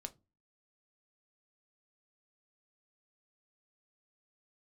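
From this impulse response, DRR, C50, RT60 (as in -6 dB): 7.5 dB, 21.5 dB, no single decay rate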